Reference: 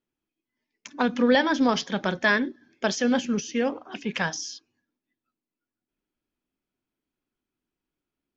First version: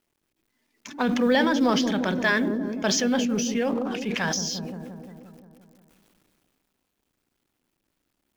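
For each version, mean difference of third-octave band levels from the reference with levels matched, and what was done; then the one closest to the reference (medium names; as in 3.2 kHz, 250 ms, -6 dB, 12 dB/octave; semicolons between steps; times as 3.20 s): 7.0 dB: companding laws mixed up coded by mu; feedback echo behind a low-pass 175 ms, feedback 59%, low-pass 400 Hz, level -5.5 dB; decay stretcher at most 21 dB/s; trim -2 dB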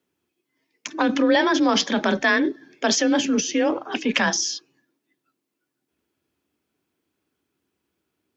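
4.0 dB: high-pass 49 Hz; in parallel at +1.5 dB: compressor with a negative ratio -29 dBFS, ratio -1; on the sum: frequency shift +31 Hz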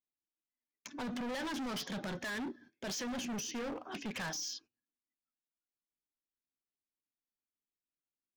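10.0 dB: gate -52 dBFS, range -18 dB; peak limiter -18.5 dBFS, peak gain reduction 9.5 dB; hard clipper -34.5 dBFS, distortion -4 dB; trim -2.5 dB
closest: second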